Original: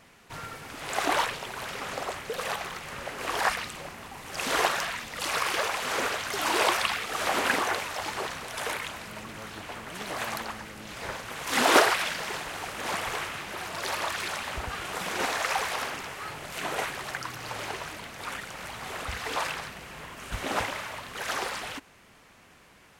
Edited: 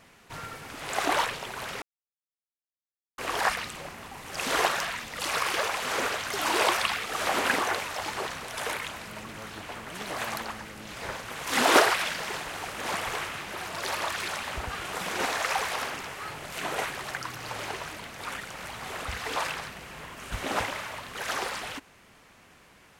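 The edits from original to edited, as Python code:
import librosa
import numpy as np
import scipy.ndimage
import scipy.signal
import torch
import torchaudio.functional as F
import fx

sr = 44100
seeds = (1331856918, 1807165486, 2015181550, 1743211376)

y = fx.edit(x, sr, fx.silence(start_s=1.82, length_s=1.36), tone=tone)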